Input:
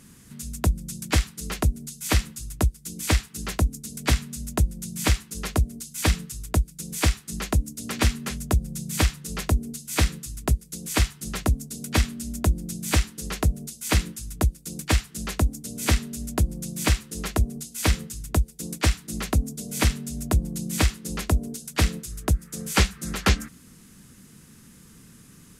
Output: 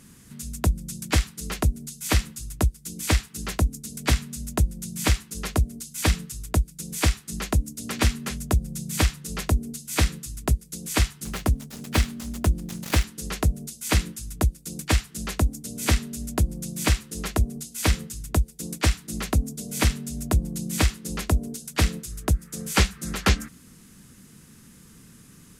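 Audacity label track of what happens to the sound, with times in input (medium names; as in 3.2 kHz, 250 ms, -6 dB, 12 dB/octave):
11.250000	13.040000	dead-time distortion of 0.06 ms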